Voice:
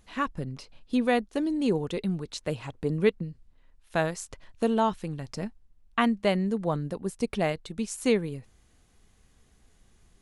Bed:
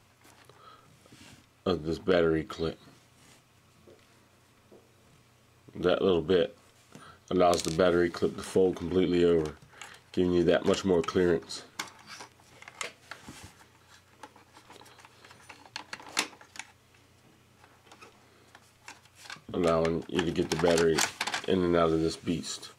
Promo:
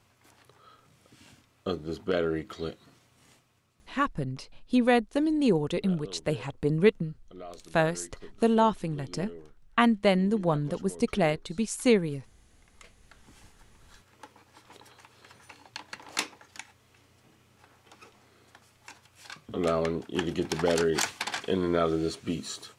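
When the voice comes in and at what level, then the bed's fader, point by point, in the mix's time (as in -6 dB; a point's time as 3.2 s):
3.80 s, +2.0 dB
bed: 3.34 s -3 dB
4.22 s -20 dB
12.62 s -20 dB
13.95 s -1 dB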